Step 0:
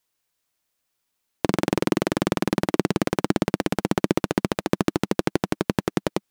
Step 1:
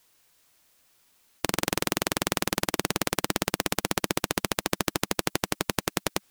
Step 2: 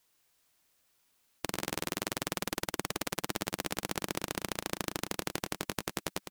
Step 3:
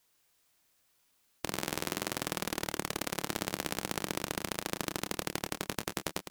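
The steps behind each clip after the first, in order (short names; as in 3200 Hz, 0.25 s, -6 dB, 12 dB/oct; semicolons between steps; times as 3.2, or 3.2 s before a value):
spectral compressor 2:1; gain +2 dB
echo 0.108 s -8.5 dB; gain -8.5 dB
doubler 27 ms -10 dB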